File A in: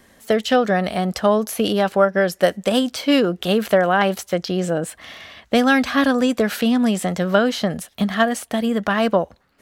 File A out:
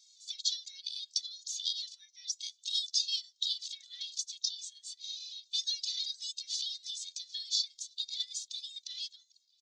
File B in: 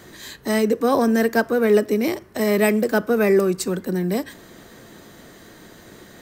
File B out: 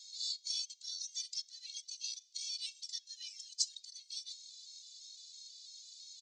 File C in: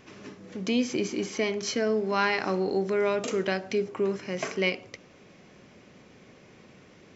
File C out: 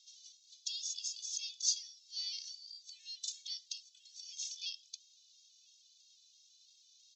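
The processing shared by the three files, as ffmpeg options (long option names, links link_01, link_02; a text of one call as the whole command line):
ffmpeg -i in.wav -filter_complex "[0:a]asplit=2[link_01][link_02];[link_02]acompressor=threshold=-25dB:ratio=6,volume=0dB[link_03];[link_01][link_03]amix=inputs=2:normalize=0,asuperpass=centerf=4700:order=8:qfactor=1.4,afreqshift=370,asplit=2[link_04][link_05];[link_05]adelay=991.3,volume=-23dB,highshelf=frequency=4000:gain=-22.3[link_06];[link_04][link_06]amix=inputs=2:normalize=0,afftfilt=real='re*gt(sin(2*PI*3*pts/sr)*(1-2*mod(floor(b*sr/1024/260),2)),0)':imag='im*gt(sin(2*PI*3*pts/sr)*(1-2*mod(floor(b*sr/1024/260),2)),0)':win_size=1024:overlap=0.75" out.wav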